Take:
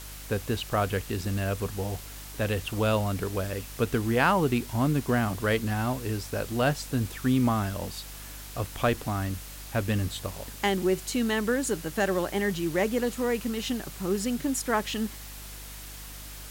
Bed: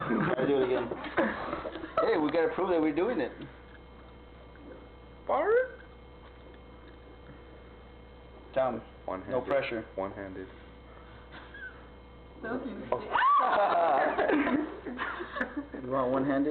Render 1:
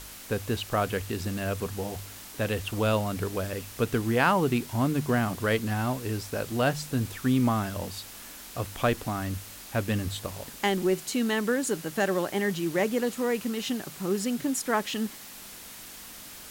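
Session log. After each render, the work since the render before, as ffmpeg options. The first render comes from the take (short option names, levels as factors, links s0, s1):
-af "bandreject=f=50:t=h:w=4,bandreject=f=100:t=h:w=4,bandreject=f=150:t=h:w=4"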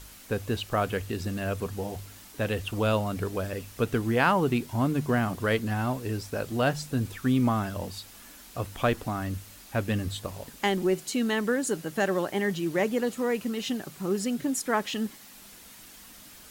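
-af "afftdn=nr=6:nf=-45"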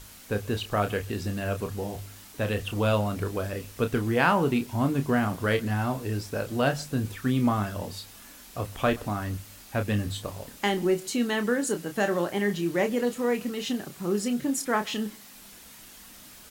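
-filter_complex "[0:a]asplit=2[s0][s1];[s1]adelay=29,volume=0.398[s2];[s0][s2]amix=inputs=2:normalize=0,asplit=2[s3][s4];[s4]adelay=128.3,volume=0.0562,highshelf=f=4000:g=-2.89[s5];[s3][s5]amix=inputs=2:normalize=0"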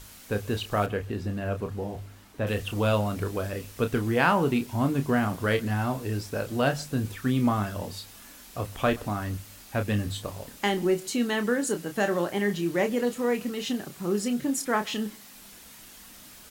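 -filter_complex "[0:a]asettb=1/sr,asplit=3[s0][s1][s2];[s0]atrim=end=0.864[s3];[s1]atrim=start=0.86:end=2.47,asetpts=PTS-STARTPTS,afade=t=in:d=0.004:c=qsin,afade=t=out:st=1.606:d=0.004:c=qsin,highshelf=f=3000:g=-12[s4];[s2]atrim=start=2.466[s5];[s3][s4]acrossfade=d=0.004:c1=hsin:c2=qsin[s6];[s6][s5]acrossfade=d=0.004:c1=qsin:c2=hsin"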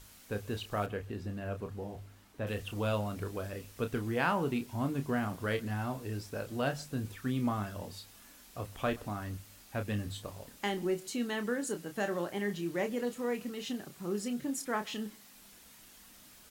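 -af "volume=0.398"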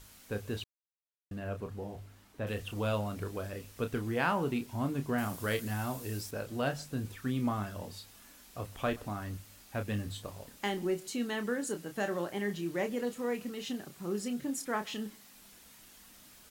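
-filter_complex "[0:a]asettb=1/sr,asplit=3[s0][s1][s2];[s0]atrim=end=5.184[s3];[s1]atrim=start=5.18:end=6.31,asetpts=PTS-STARTPTS,afade=t=in:d=0.004:c=qsin,afade=t=out:st=1.126:d=0.004:c=qsin,highshelf=f=5200:g=11.5[s4];[s2]atrim=start=6.306[s5];[s3][s4]acrossfade=d=0.004:c1=hsin:c2=qsin[s6];[s6][s5]acrossfade=d=0.004:c1=qsin:c2=hsin,asettb=1/sr,asplit=3[s7][s8][s9];[s7]atrim=end=9.264[s10];[s8]atrim=start=9.26:end=10.81,asetpts=PTS-STARTPTS,afade=t=in:d=0.004:c=qsin,afade=t=out:st=1.546:d=0.004:c=qsin,acrusher=bits=8:mode=log:mix=0:aa=0.000001[s11];[s9]atrim=start=10.806[s12];[s10][s11]acrossfade=d=0.004:c1=hsin:c2=qsin[s13];[s13][s12]acrossfade=d=0.004:c1=qsin:c2=hsin,asplit=3[s14][s15][s16];[s14]atrim=end=0.64,asetpts=PTS-STARTPTS,afade=t=out:st=0.636:d=0.004:c=hsin[s17];[s15]atrim=start=0.64:end=1.31,asetpts=PTS-STARTPTS,volume=0[s18];[s16]atrim=start=1.31,asetpts=PTS-STARTPTS,afade=t=in:d=0.004:c=hsin[s19];[s17][s18][s19]concat=n=3:v=0:a=1"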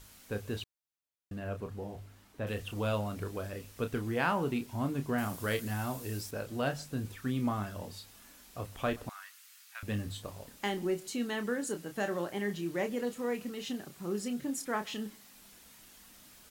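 -filter_complex "[0:a]asettb=1/sr,asplit=3[s0][s1][s2];[s0]atrim=end=9.094[s3];[s1]atrim=start=9.09:end=9.83,asetpts=PTS-STARTPTS,afade=t=in:d=0.004:c=qsin,afade=t=out:st=0.736:d=0.004:c=qsin,highpass=f=1300:w=0.5412,highpass=f=1300:w=1.3066[s4];[s2]atrim=start=9.826[s5];[s3][s4]acrossfade=d=0.004:c1=hsin:c2=qsin[s6];[s6][s5]acrossfade=d=0.004:c1=qsin:c2=hsin"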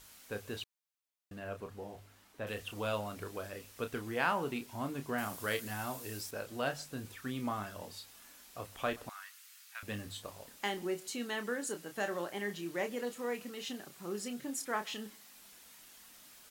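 -af "lowshelf=f=300:g=-10.5"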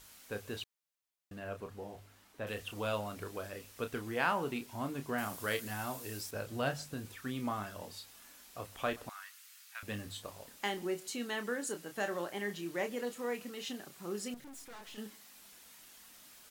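-filter_complex "[0:a]asettb=1/sr,asplit=3[s0][s1][s2];[s0]atrim=end=6.344[s3];[s1]atrim=start=6.34:end=6.94,asetpts=PTS-STARTPTS,afade=t=in:d=0.004:c=qsin,afade=t=out:st=0.596:d=0.004:c=qsin,equalizer=f=97:w=0.77:g=8.5[s4];[s2]atrim=start=6.936[s5];[s3][s4]acrossfade=d=0.004:c1=hsin:c2=qsin[s6];[s6][s5]acrossfade=d=0.004:c1=qsin:c2=hsin,asettb=1/sr,asplit=3[s7][s8][s9];[s7]atrim=end=14.344[s10];[s8]atrim=start=14.34:end=14.98,asetpts=PTS-STARTPTS,afade=t=in:d=0.004:c=qsin,afade=t=out:st=0.636:d=0.004:c=qsin,aeval=exprs='(tanh(282*val(0)+0.6)-tanh(0.6))/282':c=same[s11];[s9]atrim=start=14.976[s12];[s10][s11]acrossfade=d=0.004:c1=hsin:c2=qsin[s13];[s13][s12]acrossfade=d=0.004:c1=qsin:c2=hsin"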